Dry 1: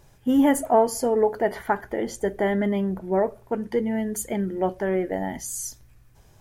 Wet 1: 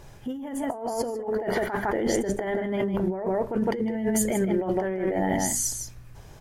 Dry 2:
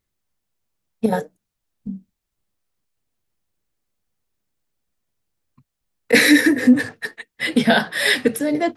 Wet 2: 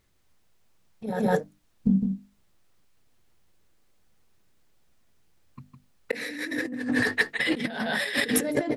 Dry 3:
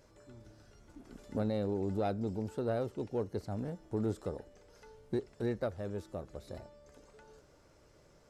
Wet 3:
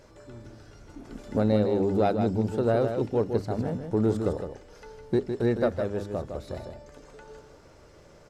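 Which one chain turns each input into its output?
high shelf 7200 Hz -7 dB; notches 50/100/150/200/250/300 Hz; echo 0.158 s -7 dB; negative-ratio compressor -30 dBFS, ratio -1; match loudness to -27 LUFS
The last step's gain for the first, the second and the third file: +2.5, +1.5, +9.5 dB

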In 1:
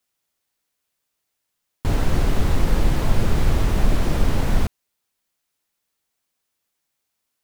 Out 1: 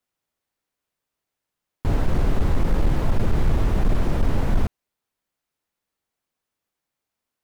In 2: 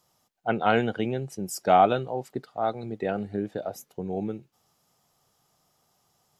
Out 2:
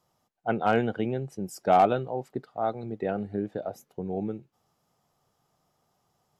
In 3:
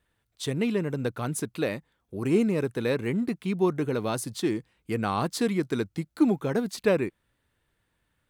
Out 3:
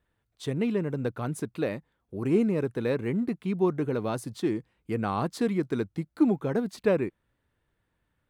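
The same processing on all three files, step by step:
high shelf 2400 Hz -9 dB; overloaded stage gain 11.5 dB; normalise peaks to -12 dBFS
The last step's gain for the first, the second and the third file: -0.5, -0.5, -0.5 dB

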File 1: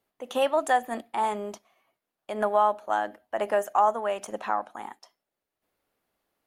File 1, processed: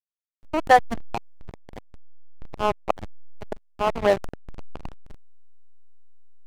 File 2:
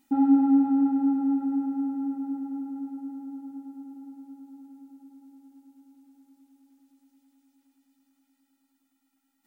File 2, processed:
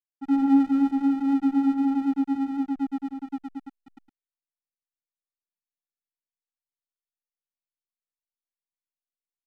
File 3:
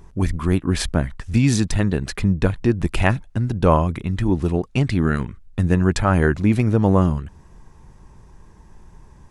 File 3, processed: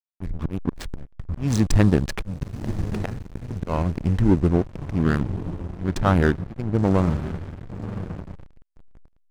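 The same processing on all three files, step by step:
Wiener smoothing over 15 samples; auto swell 0.366 s; vocal rider within 4 dB 2 s; diffused feedback echo 1.07 s, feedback 40%, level -8.5 dB; backlash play -22 dBFS; match loudness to -24 LUFS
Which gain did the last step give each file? +11.0, +5.0, +1.0 dB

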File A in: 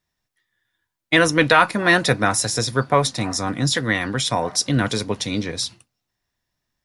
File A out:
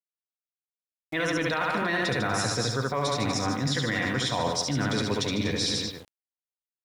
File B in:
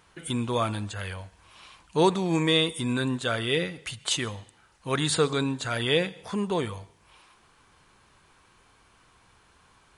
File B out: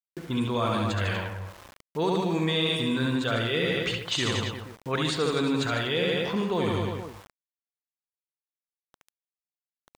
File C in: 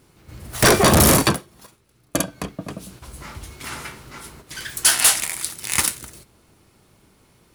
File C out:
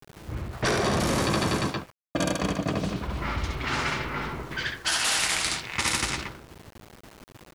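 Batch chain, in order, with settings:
LPF 6000 Hz 12 dB/oct; on a send: reverse bouncing-ball echo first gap 70 ms, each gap 1.15×, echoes 5; on the sum: limiter -9.5 dBFS; reverse; compressor 6:1, threshold -30 dBFS; reverse; low-pass opened by the level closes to 310 Hz, open at -28.5 dBFS; sample gate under -53 dBFS; mismatched tape noise reduction encoder only; match loudness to -27 LUFS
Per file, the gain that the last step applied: +5.5, +6.5, +7.0 dB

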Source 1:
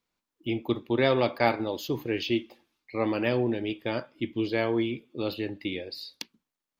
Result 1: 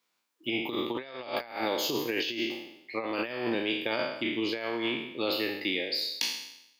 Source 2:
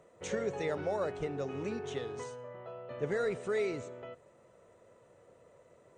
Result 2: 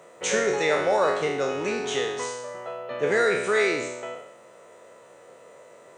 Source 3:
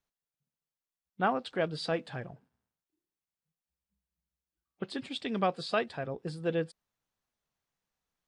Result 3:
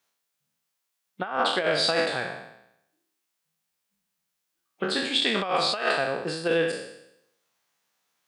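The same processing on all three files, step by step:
spectral trails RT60 0.81 s; HPF 160 Hz 12 dB/oct; low shelf 480 Hz -10.5 dB; negative-ratio compressor -33 dBFS, ratio -0.5; normalise peaks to -9 dBFS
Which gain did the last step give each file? +2.5, +14.0, +10.0 dB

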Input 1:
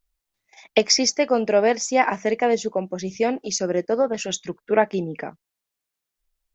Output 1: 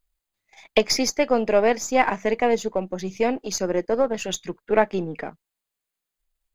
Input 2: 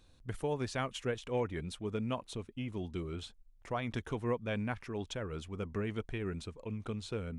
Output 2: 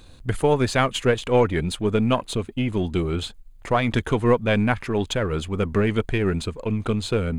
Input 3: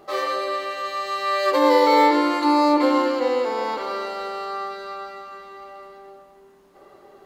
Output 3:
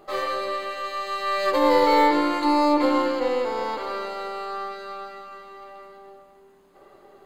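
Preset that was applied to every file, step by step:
half-wave gain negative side -3 dB; notch 5600 Hz, Q 6.5; match loudness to -23 LUFS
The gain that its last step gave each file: +0.5, +17.0, -1.0 dB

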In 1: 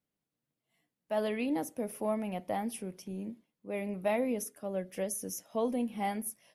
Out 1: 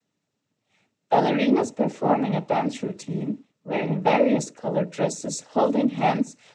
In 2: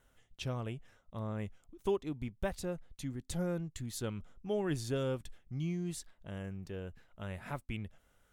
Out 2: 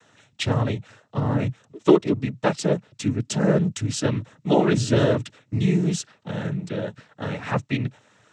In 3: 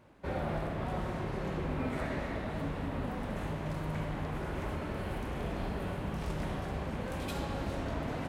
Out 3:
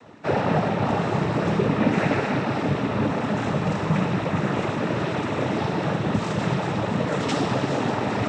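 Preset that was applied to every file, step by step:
noise vocoder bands 12; match loudness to -24 LUFS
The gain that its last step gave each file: +12.0, +16.0, +14.0 dB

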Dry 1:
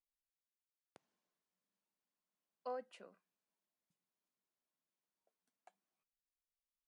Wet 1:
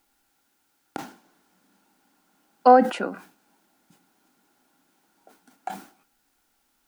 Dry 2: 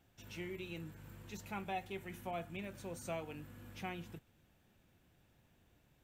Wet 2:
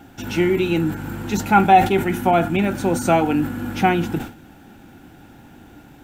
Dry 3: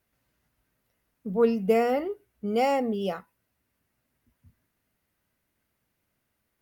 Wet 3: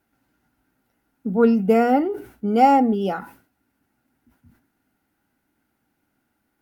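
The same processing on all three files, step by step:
small resonant body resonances 280/800/1400 Hz, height 13 dB, ringing for 25 ms; sustainer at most 130 dB/s; match loudness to -19 LUFS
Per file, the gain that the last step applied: +24.0, +20.0, +0.5 dB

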